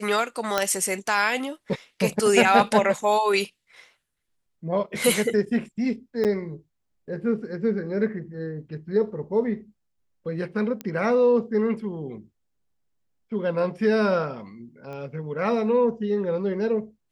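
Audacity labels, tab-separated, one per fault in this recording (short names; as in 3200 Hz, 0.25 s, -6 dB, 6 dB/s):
0.580000	0.580000	pop -7 dBFS
6.240000	6.250000	gap 8.1 ms
10.810000	10.810000	pop -17 dBFS
14.930000	14.930000	pop -27 dBFS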